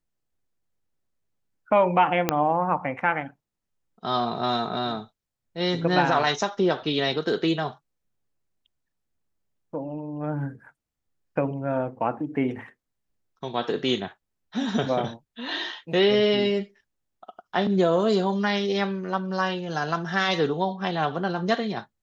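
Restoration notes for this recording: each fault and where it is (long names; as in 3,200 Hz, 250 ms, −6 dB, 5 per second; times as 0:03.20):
0:02.29: click −5 dBFS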